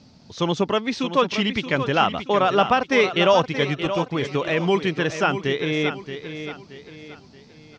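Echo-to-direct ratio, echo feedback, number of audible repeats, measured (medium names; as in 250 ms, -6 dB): -9.5 dB, 38%, 3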